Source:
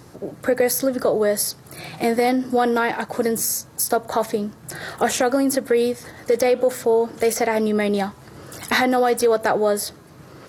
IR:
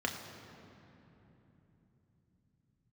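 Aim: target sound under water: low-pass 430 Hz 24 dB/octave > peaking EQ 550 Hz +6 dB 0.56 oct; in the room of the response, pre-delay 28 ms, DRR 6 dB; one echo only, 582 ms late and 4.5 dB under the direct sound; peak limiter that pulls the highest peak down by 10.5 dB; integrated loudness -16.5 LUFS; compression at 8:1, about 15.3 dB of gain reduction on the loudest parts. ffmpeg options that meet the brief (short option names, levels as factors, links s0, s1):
-filter_complex "[0:a]acompressor=threshold=0.0316:ratio=8,alimiter=level_in=1.06:limit=0.0631:level=0:latency=1,volume=0.944,aecho=1:1:582:0.596,asplit=2[s0][s1];[1:a]atrim=start_sample=2205,adelay=28[s2];[s1][s2]afir=irnorm=-1:irlink=0,volume=0.251[s3];[s0][s3]amix=inputs=2:normalize=0,lowpass=f=430:w=0.5412,lowpass=f=430:w=1.3066,equalizer=f=550:t=o:w=0.56:g=6,volume=8.91"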